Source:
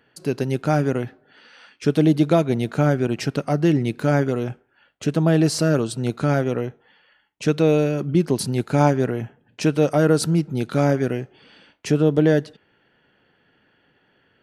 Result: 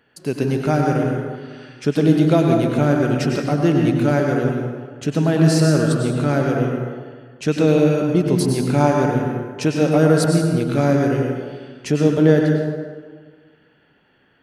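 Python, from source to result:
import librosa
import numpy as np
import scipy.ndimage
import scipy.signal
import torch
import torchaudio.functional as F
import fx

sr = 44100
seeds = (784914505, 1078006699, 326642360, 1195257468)

y = fx.rev_plate(x, sr, seeds[0], rt60_s=1.6, hf_ratio=0.55, predelay_ms=85, drr_db=0.5)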